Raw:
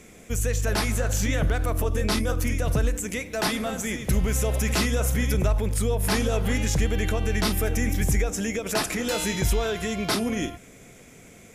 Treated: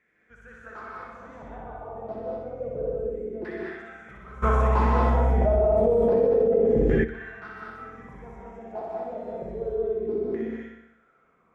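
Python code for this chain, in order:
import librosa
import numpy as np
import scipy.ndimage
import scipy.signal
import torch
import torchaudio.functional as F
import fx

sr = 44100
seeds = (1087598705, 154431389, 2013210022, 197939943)

y = fx.tilt_eq(x, sr, slope=-4.0)
y = fx.filter_lfo_bandpass(y, sr, shape='saw_down', hz=0.29, low_hz=360.0, high_hz=1800.0, q=7.3)
y = fx.echo_feedback(y, sr, ms=62, feedback_pct=58, wet_db=-3.5)
y = fx.rev_gated(y, sr, seeds[0], gate_ms=240, shape='rising', drr_db=-2.0)
y = fx.env_flatten(y, sr, amount_pct=100, at=(4.42, 7.03), fade=0.02)
y = y * 10.0 ** (-3.0 / 20.0)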